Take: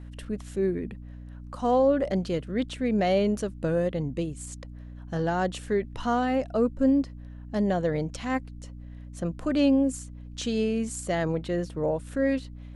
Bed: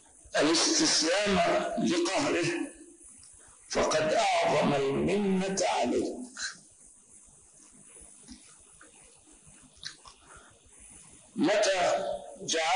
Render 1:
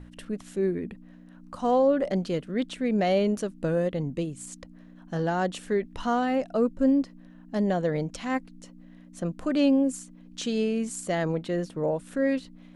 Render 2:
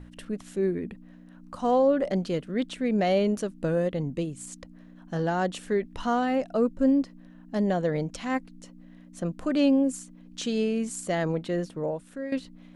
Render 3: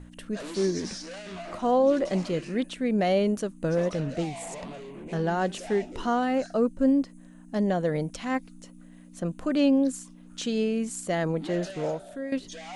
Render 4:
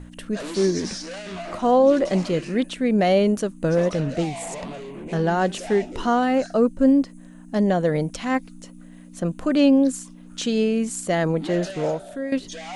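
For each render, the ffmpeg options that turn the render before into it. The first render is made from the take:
-af "bandreject=f=60:t=h:w=6,bandreject=f=120:t=h:w=6"
-filter_complex "[0:a]asplit=2[s0][s1];[s0]atrim=end=12.32,asetpts=PTS-STARTPTS,afade=t=out:st=11.59:d=0.73:silence=0.237137[s2];[s1]atrim=start=12.32,asetpts=PTS-STARTPTS,afade=t=in:d=0.004:c=hsin:silence=0.237137[s3];[s2][s3]concat=n=2:v=0:a=1"
-filter_complex "[1:a]volume=0.2[s0];[0:a][s0]amix=inputs=2:normalize=0"
-af "volume=1.88"

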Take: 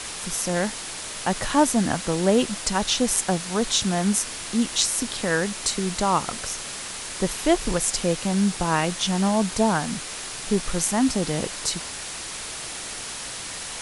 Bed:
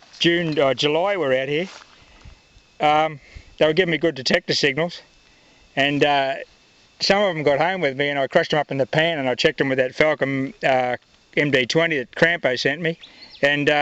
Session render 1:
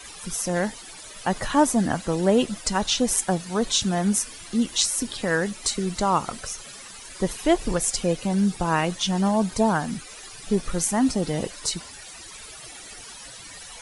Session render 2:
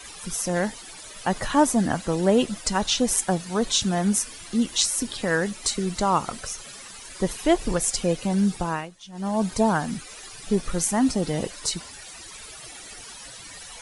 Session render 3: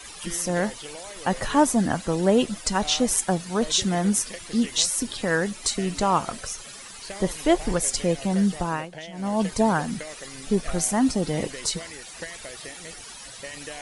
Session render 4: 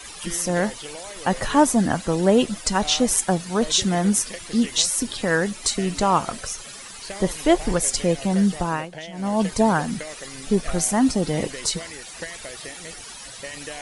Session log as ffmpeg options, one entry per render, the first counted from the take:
-af "afftdn=nr=14:nf=-34"
-filter_complex "[0:a]asplit=3[s0][s1][s2];[s0]atrim=end=8.9,asetpts=PTS-STARTPTS,afade=t=out:st=8.56:d=0.34:silence=0.112202[s3];[s1]atrim=start=8.9:end=9.12,asetpts=PTS-STARTPTS,volume=0.112[s4];[s2]atrim=start=9.12,asetpts=PTS-STARTPTS,afade=t=in:d=0.34:silence=0.112202[s5];[s3][s4][s5]concat=n=3:v=0:a=1"
-filter_complex "[1:a]volume=0.0841[s0];[0:a][s0]amix=inputs=2:normalize=0"
-af "volume=1.33,alimiter=limit=0.708:level=0:latency=1"

